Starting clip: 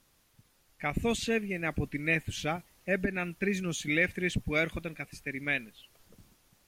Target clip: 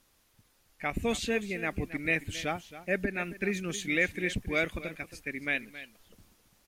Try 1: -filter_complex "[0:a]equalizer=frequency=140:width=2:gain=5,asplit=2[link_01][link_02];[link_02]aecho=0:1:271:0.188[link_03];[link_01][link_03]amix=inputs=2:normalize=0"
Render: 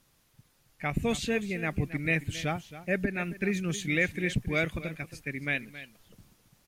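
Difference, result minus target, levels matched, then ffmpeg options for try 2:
125 Hz band +6.0 dB
-filter_complex "[0:a]equalizer=frequency=140:width=2:gain=-6,asplit=2[link_01][link_02];[link_02]aecho=0:1:271:0.188[link_03];[link_01][link_03]amix=inputs=2:normalize=0"

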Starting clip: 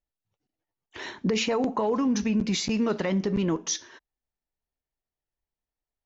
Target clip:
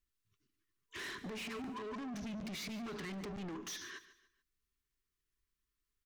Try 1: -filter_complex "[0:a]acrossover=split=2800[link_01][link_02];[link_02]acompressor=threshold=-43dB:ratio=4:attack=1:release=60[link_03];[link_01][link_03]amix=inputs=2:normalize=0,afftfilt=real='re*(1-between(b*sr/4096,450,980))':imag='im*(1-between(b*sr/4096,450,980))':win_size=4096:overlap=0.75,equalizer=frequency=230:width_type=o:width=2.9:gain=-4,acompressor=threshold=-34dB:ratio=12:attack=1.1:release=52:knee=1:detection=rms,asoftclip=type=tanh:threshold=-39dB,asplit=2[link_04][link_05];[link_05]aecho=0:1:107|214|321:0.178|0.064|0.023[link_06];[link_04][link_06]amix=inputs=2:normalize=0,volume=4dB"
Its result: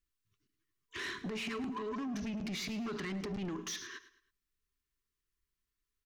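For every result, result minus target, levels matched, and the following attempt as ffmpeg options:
echo 38 ms early; soft clipping: distortion −5 dB
-filter_complex "[0:a]acrossover=split=2800[link_01][link_02];[link_02]acompressor=threshold=-43dB:ratio=4:attack=1:release=60[link_03];[link_01][link_03]amix=inputs=2:normalize=0,afftfilt=real='re*(1-between(b*sr/4096,450,980))':imag='im*(1-between(b*sr/4096,450,980))':win_size=4096:overlap=0.75,equalizer=frequency=230:width_type=o:width=2.9:gain=-4,acompressor=threshold=-34dB:ratio=12:attack=1.1:release=52:knee=1:detection=rms,asoftclip=type=tanh:threshold=-39dB,asplit=2[link_04][link_05];[link_05]aecho=0:1:145|290|435:0.178|0.064|0.023[link_06];[link_04][link_06]amix=inputs=2:normalize=0,volume=4dB"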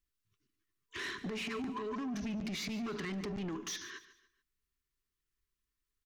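soft clipping: distortion −5 dB
-filter_complex "[0:a]acrossover=split=2800[link_01][link_02];[link_02]acompressor=threshold=-43dB:ratio=4:attack=1:release=60[link_03];[link_01][link_03]amix=inputs=2:normalize=0,afftfilt=real='re*(1-between(b*sr/4096,450,980))':imag='im*(1-between(b*sr/4096,450,980))':win_size=4096:overlap=0.75,equalizer=frequency=230:width_type=o:width=2.9:gain=-4,acompressor=threshold=-34dB:ratio=12:attack=1.1:release=52:knee=1:detection=rms,asoftclip=type=tanh:threshold=-45.5dB,asplit=2[link_04][link_05];[link_05]aecho=0:1:145|290|435:0.178|0.064|0.023[link_06];[link_04][link_06]amix=inputs=2:normalize=0,volume=4dB"

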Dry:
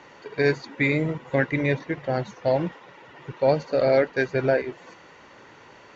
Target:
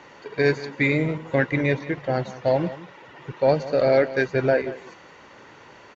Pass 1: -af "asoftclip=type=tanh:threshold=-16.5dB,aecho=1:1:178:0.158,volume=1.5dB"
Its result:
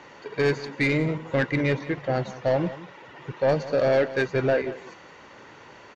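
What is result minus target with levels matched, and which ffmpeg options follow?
soft clipping: distortion +19 dB
-af "asoftclip=type=tanh:threshold=-4.5dB,aecho=1:1:178:0.158,volume=1.5dB"

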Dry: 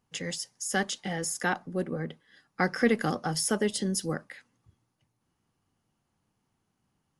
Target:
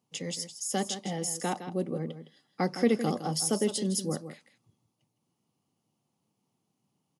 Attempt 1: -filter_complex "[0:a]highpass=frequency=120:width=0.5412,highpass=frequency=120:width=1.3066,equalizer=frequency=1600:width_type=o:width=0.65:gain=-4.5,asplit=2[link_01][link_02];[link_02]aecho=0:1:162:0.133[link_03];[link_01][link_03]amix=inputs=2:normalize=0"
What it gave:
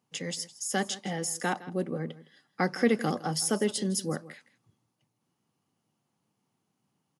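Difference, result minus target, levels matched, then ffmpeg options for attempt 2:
2,000 Hz band +6.5 dB; echo-to-direct −6.5 dB
-filter_complex "[0:a]highpass=frequency=120:width=0.5412,highpass=frequency=120:width=1.3066,equalizer=frequency=1600:width_type=o:width=0.65:gain=-14.5,asplit=2[link_01][link_02];[link_02]aecho=0:1:162:0.282[link_03];[link_01][link_03]amix=inputs=2:normalize=0"

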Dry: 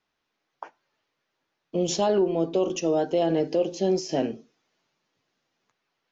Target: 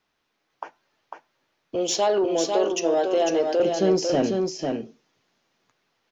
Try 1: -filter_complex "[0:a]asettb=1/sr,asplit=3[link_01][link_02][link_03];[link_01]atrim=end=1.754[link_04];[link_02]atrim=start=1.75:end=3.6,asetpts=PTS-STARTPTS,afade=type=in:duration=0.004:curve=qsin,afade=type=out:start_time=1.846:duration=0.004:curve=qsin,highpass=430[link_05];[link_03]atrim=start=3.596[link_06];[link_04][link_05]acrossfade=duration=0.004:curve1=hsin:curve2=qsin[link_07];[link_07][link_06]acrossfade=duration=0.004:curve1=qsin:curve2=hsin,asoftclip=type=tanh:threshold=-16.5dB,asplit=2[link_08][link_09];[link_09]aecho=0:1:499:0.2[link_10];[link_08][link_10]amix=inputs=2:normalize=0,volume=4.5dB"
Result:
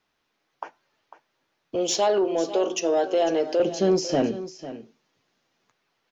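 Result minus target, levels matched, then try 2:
echo-to-direct −9.5 dB
-filter_complex "[0:a]asettb=1/sr,asplit=3[link_01][link_02][link_03];[link_01]atrim=end=1.754[link_04];[link_02]atrim=start=1.75:end=3.6,asetpts=PTS-STARTPTS,afade=type=in:duration=0.004:curve=qsin,afade=type=out:start_time=1.846:duration=0.004:curve=qsin,highpass=430[link_05];[link_03]atrim=start=3.596[link_06];[link_04][link_05]acrossfade=duration=0.004:curve1=hsin:curve2=qsin[link_07];[link_07][link_06]acrossfade=duration=0.004:curve1=qsin:curve2=hsin,asoftclip=type=tanh:threshold=-16.5dB,asplit=2[link_08][link_09];[link_09]aecho=0:1:499:0.596[link_10];[link_08][link_10]amix=inputs=2:normalize=0,volume=4.5dB"

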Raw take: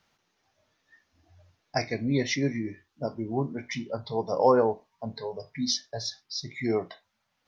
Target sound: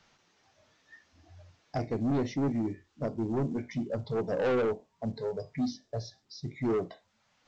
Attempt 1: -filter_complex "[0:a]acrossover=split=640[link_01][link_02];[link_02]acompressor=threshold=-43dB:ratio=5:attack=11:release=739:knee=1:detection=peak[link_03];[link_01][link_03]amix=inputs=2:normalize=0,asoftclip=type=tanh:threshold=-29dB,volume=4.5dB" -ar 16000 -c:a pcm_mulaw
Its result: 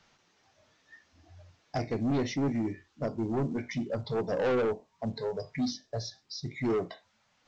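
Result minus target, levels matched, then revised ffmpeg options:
downward compressor: peak gain reduction −7 dB
-filter_complex "[0:a]acrossover=split=640[link_01][link_02];[link_02]acompressor=threshold=-51.5dB:ratio=5:attack=11:release=739:knee=1:detection=peak[link_03];[link_01][link_03]amix=inputs=2:normalize=0,asoftclip=type=tanh:threshold=-29dB,volume=4.5dB" -ar 16000 -c:a pcm_mulaw

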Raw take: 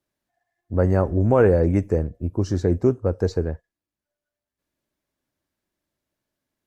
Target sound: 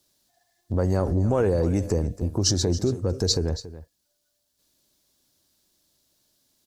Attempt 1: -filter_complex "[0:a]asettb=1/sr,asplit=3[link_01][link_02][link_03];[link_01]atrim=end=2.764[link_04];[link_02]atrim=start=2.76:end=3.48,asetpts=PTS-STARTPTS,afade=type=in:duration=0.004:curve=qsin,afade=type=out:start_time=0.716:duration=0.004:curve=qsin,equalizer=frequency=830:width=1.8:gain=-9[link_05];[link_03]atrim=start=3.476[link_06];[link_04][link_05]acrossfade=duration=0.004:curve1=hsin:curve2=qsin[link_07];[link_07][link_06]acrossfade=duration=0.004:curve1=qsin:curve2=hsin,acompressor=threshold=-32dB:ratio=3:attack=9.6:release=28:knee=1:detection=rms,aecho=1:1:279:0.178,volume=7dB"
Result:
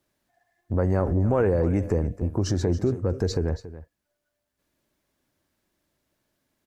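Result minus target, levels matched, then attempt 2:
8,000 Hz band −12.0 dB
-filter_complex "[0:a]asettb=1/sr,asplit=3[link_01][link_02][link_03];[link_01]atrim=end=2.764[link_04];[link_02]atrim=start=2.76:end=3.48,asetpts=PTS-STARTPTS,afade=type=in:duration=0.004:curve=qsin,afade=type=out:start_time=0.716:duration=0.004:curve=qsin,equalizer=frequency=830:width=1.8:gain=-9[link_05];[link_03]atrim=start=3.476[link_06];[link_04][link_05]acrossfade=duration=0.004:curve1=hsin:curve2=qsin[link_07];[link_07][link_06]acrossfade=duration=0.004:curve1=qsin:curve2=hsin,acompressor=threshold=-32dB:ratio=3:attack=9.6:release=28:knee=1:detection=rms,highshelf=frequency=3000:width_type=q:width=1.5:gain=11,aecho=1:1:279:0.178,volume=7dB"

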